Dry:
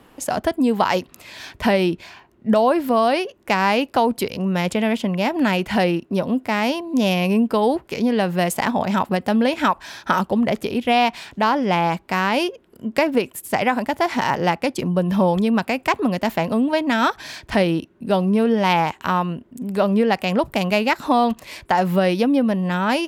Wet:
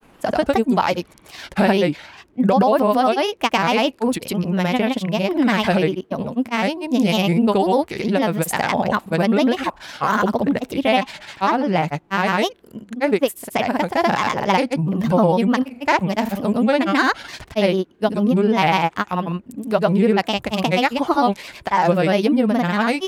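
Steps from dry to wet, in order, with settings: grains, pitch spread up and down by 3 st; gain +2 dB

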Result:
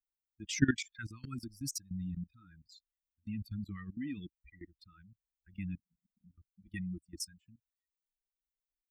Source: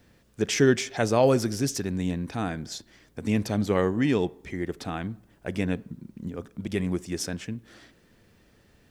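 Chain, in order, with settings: per-bin expansion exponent 3; level quantiser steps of 20 dB; elliptic band-stop 290–1400 Hz, stop band 50 dB; gain +3 dB

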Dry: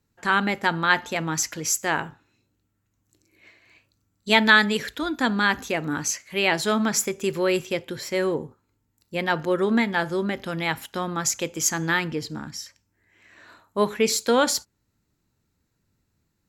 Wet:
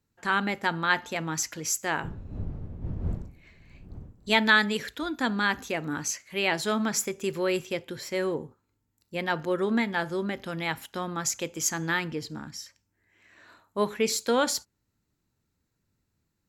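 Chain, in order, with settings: 2.03–4.34 wind noise 130 Hz -34 dBFS; gain -4.5 dB

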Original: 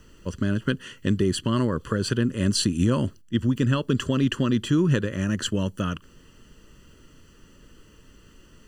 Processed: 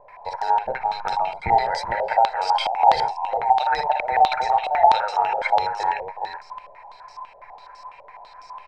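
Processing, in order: band inversion scrambler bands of 1000 Hz; 0.66–1.52 resonant low shelf 400 Hz +13 dB, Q 3; in parallel at +1 dB: compressor, threshold -31 dBFS, peak gain reduction 13.5 dB; on the sum: tapped delay 55/62/72/374/417/434 ms -6.5/-10/-14/-18/-14/-8.5 dB; stepped low-pass 12 Hz 570–5400 Hz; gain -5.5 dB

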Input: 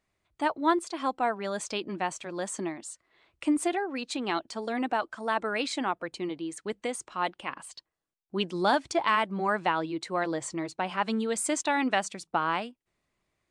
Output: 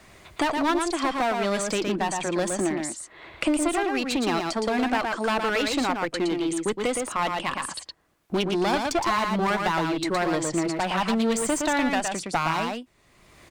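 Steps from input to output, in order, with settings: wow and flutter 28 cents; in parallel at +1.5 dB: limiter -20 dBFS, peak gain reduction 9.5 dB; 11.46–11.9 on the sum: notch comb 410 Hz; one-sided clip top -25 dBFS; on a send: echo 0.115 s -5 dB; on the sum: three-band squash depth 70%

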